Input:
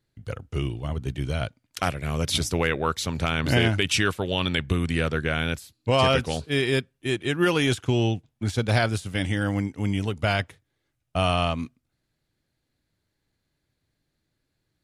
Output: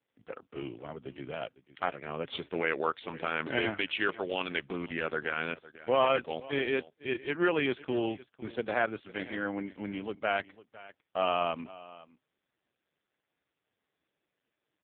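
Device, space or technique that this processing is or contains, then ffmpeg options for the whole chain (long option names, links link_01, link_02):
satellite phone: -af "highpass=320,lowpass=3300,aecho=1:1:504:0.112,volume=-3dB" -ar 8000 -c:a libopencore_amrnb -b:a 4750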